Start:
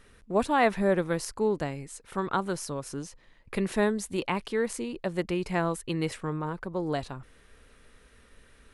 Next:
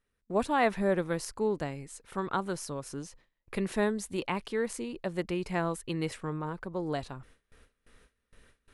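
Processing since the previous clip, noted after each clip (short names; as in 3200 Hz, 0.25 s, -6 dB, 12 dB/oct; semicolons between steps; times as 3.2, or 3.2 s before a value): gate with hold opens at -45 dBFS; gain -3 dB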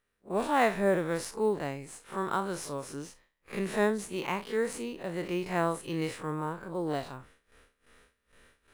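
time blur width 81 ms; low shelf 280 Hz -8.5 dB; in parallel at -10 dB: sample-rate reducer 9000 Hz, jitter 0%; on the sum: gain +3.5 dB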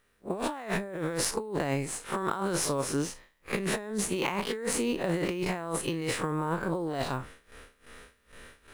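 negative-ratio compressor -37 dBFS, ratio -1; gain +5.5 dB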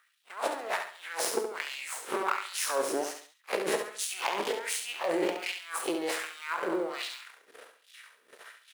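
half-wave rectifier; LFO high-pass sine 1.3 Hz 340–3500 Hz; on a send: feedback echo 69 ms, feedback 35%, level -7 dB; on the sum: gain +2 dB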